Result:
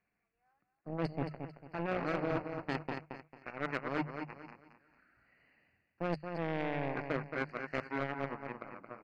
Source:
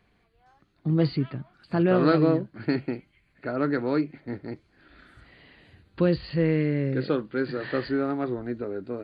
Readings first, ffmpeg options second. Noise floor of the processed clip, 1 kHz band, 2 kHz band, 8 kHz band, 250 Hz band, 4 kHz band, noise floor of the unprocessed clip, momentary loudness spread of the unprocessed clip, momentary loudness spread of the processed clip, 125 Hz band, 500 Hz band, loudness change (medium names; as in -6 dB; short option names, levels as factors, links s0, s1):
-83 dBFS, -5.0 dB, -4.5 dB, no reading, -15.0 dB, -10.5 dB, -66 dBFS, 15 LU, 12 LU, -14.0 dB, -12.0 dB, -12.0 dB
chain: -filter_complex "[0:a]aeval=exprs='0.335*(cos(1*acos(clip(val(0)/0.335,-1,1)))-cos(1*PI/2))+0.0944*(cos(3*acos(clip(val(0)/0.335,-1,1)))-cos(3*PI/2))+0.00944*(cos(7*acos(clip(val(0)/0.335,-1,1)))-cos(7*PI/2))':c=same,asuperstop=centerf=3500:order=8:qfactor=2.5,highshelf=f=4200:g=-7.5,bandreject=f=50:t=h:w=6,bandreject=f=100:t=h:w=6,bandreject=f=150:t=h:w=6,areverse,acompressor=threshold=0.0126:ratio=8,areverse,aecho=1:1:223|446|669|892:0.376|0.113|0.0338|0.0101,asplit=2[s0][s1];[s1]highpass=f=720:p=1,volume=5.01,asoftclip=type=tanh:threshold=0.0376[s2];[s0][s2]amix=inputs=2:normalize=0,lowpass=f=1900:p=1,volume=0.501,equalizer=f=160:t=o:w=0.67:g=3,equalizer=f=400:t=o:w=0.67:g=-5,equalizer=f=1000:t=o:w=0.67:g=-4,equalizer=f=2500:t=o:w=0.67:g=3,volume=2.51"